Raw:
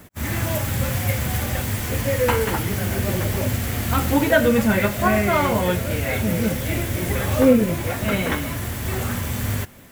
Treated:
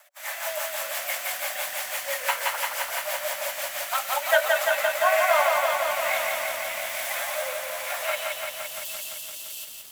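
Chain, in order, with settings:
Chebyshev high-pass filter 570 Hz, order 8, from 0:08.15 2,600 Hz
rotating-speaker cabinet horn 6 Hz, later 1.1 Hz, at 0:03.99
feedback echo at a low word length 171 ms, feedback 80%, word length 8 bits, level −3 dB

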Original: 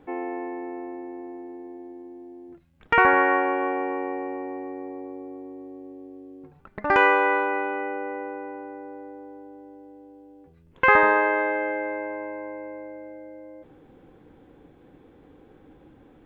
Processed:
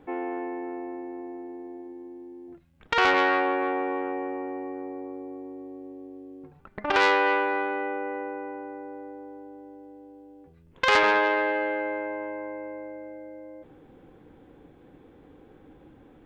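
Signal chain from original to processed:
0:01.81–0:02.48: hum removal 63.83 Hz, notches 26
saturating transformer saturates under 2,600 Hz

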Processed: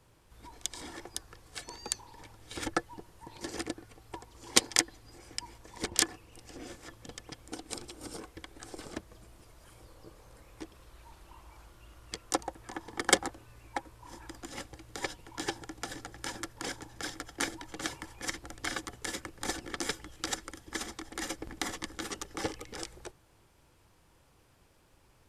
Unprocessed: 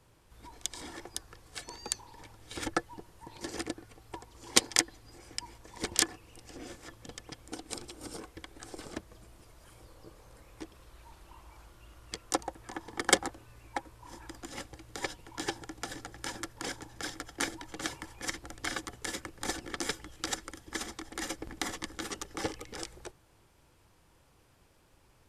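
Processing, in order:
0:05.86–0:06.32: one half of a high-frequency compander decoder only

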